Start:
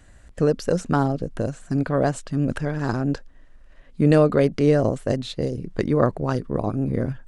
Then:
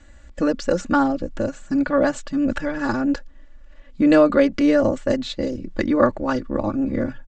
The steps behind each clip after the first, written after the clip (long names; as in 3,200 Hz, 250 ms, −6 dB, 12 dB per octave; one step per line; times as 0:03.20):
elliptic low-pass filter 7,500 Hz, stop band 50 dB
dynamic equaliser 1,600 Hz, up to +4 dB, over −41 dBFS, Q 1.1
comb filter 3.5 ms, depth 95%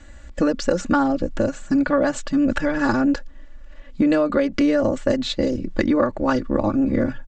downward compressor 12 to 1, threshold −19 dBFS, peak gain reduction 10.5 dB
level +4.5 dB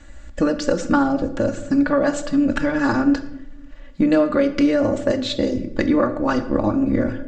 convolution reverb RT60 0.85 s, pre-delay 7 ms, DRR 8.5 dB